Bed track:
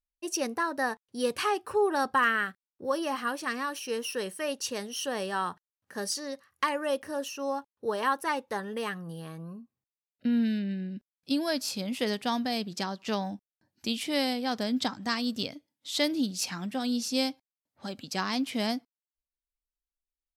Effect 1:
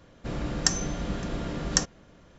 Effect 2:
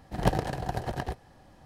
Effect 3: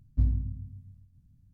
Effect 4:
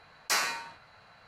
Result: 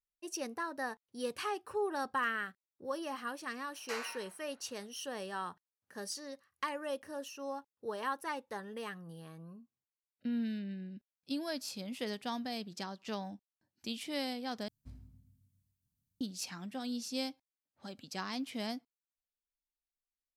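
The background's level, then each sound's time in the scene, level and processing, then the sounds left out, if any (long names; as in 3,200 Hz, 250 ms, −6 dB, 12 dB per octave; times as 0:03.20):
bed track −9 dB
0:03.59: mix in 4 −11.5 dB + bass and treble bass −14 dB, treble −9 dB
0:14.68: overwrite with 3 −12 dB + spectral tilt +4 dB per octave
not used: 1, 2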